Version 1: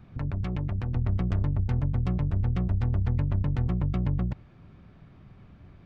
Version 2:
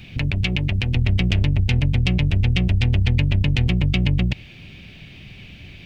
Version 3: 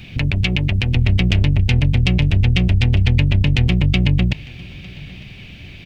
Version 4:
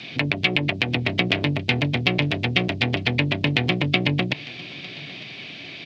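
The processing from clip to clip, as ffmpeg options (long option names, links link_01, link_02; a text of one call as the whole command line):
ffmpeg -i in.wav -filter_complex "[0:a]highshelf=frequency=1800:width_type=q:width=3:gain=13.5,asplit=2[link_01][link_02];[link_02]alimiter=limit=-20.5dB:level=0:latency=1:release=86,volume=-2dB[link_03];[link_01][link_03]amix=inputs=2:normalize=0,volume=3.5dB" out.wav
ffmpeg -i in.wav -af "aecho=1:1:903:0.0794,volume=3.5dB" out.wav
ffmpeg -i in.wav -filter_complex "[0:a]highpass=frequency=160:width=0.5412,highpass=frequency=160:width=1.3066,equalizer=frequency=190:width_type=q:width=4:gain=-8,equalizer=frequency=300:width_type=q:width=4:gain=4,equalizer=frequency=430:width_type=q:width=4:gain=3,equalizer=frequency=670:width_type=q:width=4:gain=7,equalizer=frequency=1100:width_type=q:width=4:gain=4,equalizer=frequency=2800:width_type=q:width=4:gain=-5,lowpass=frequency=4700:width=0.5412,lowpass=frequency=4700:width=1.3066,acrossover=split=3400[link_01][link_02];[link_02]acompressor=threshold=-40dB:ratio=4:attack=1:release=60[link_03];[link_01][link_03]amix=inputs=2:normalize=0,crystalizer=i=4.5:c=0" out.wav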